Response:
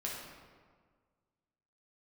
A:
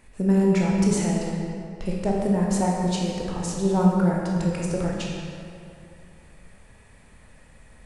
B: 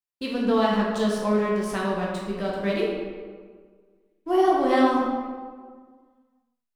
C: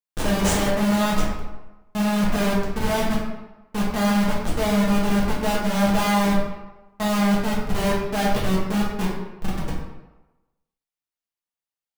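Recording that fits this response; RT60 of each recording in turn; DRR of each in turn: B; 2.4 s, 1.7 s, 1.1 s; -2.5 dB, -4.5 dB, -6.5 dB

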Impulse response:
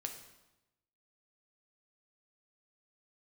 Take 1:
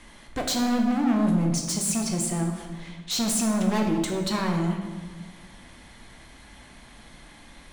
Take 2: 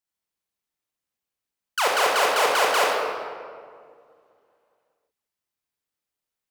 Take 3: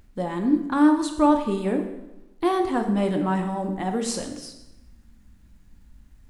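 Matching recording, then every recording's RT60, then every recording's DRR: 3; 1.4 s, 2.1 s, 0.95 s; 1.5 dB, -3.0 dB, 4.0 dB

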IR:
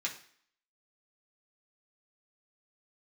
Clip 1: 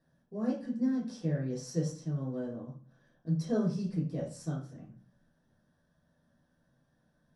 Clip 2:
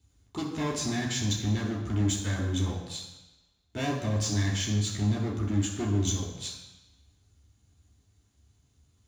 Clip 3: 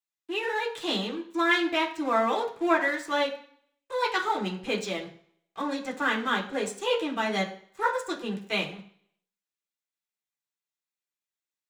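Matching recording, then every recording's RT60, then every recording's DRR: 3; 0.40 s, 1.0 s, 0.55 s; -7.0 dB, -4.0 dB, -3.0 dB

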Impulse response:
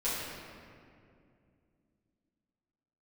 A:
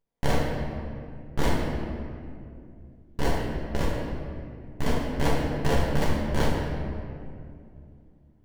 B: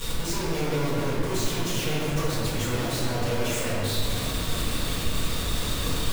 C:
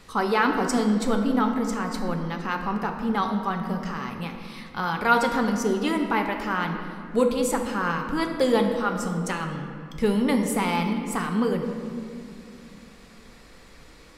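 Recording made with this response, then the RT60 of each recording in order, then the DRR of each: B; 2.4 s, 2.4 s, 2.5 s; -3.5 dB, -12.5 dB, 3.0 dB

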